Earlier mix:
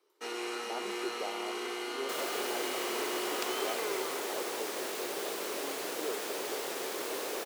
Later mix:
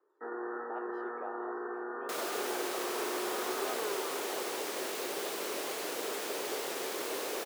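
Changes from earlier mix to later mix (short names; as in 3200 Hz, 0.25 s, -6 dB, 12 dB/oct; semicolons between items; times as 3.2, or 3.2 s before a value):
speech: add band-pass 1100 Hz, Q 0.97; first sound: add brick-wall FIR low-pass 1900 Hz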